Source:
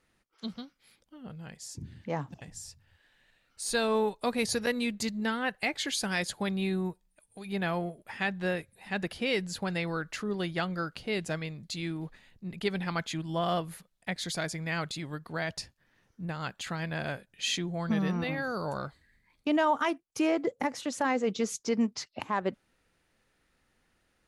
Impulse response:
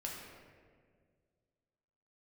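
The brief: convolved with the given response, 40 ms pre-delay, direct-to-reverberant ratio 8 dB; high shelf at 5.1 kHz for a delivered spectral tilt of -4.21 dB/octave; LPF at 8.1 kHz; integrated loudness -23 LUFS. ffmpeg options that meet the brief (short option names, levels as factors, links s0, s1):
-filter_complex "[0:a]lowpass=8100,highshelf=f=5100:g=5,asplit=2[s0][s1];[1:a]atrim=start_sample=2205,adelay=40[s2];[s1][s2]afir=irnorm=-1:irlink=0,volume=0.398[s3];[s0][s3]amix=inputs=2:normalize=0,volume=2.66"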